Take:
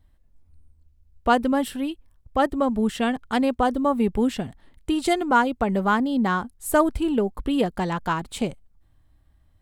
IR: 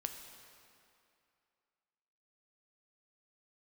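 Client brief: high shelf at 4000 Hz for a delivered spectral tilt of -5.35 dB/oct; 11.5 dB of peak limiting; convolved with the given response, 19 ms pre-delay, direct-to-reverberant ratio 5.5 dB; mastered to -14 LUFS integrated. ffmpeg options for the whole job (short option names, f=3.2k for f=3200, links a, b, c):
-filter_complex "[0:a]highshelf=f=4k:g=-8,alimiter=limit=-18dB:level=0:latency=1,asplit=2[a][b];[1:a]atrim=start_sample=2205,adelay=19[c];[b][c]afir=irnorm=-1:irlink=0,volume=-4.5dB[d];[a][d]amix=inputs=2:normalize=0,volume=12.5dB"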